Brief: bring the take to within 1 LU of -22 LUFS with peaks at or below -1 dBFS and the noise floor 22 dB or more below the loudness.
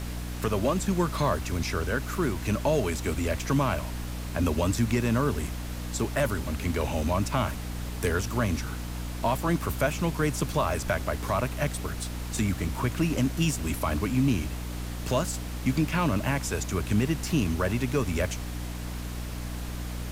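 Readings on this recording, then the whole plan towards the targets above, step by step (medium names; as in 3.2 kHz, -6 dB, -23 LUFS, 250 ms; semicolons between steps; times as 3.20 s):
hum 60 Hz; highest harmonic 300 Hz; hum level -32 dBFS; noise floor -35 dBFS; noise floor target -51 dBFS; loudness -28.5 LUFS; peak level -13.5 dBFS; loudness target -22.0 LUFS
-> hum notches 60/120/180/240/300 Hz; noise print and reduce 16 dB; trim +6.5 dB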